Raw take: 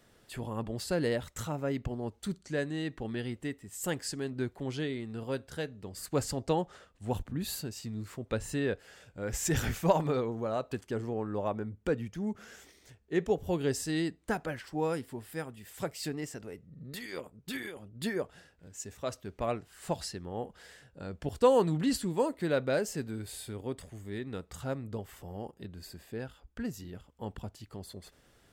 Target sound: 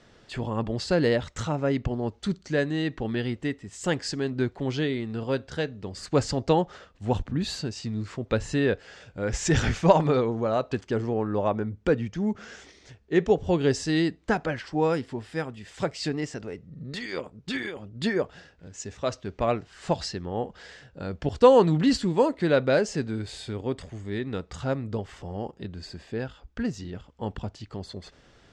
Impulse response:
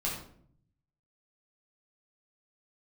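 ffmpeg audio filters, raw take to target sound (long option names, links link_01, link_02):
-af "lowpass=frequency=6400:width=0.5412,lowpass=frequency=6400:width=1.3066,volume=7.5dB"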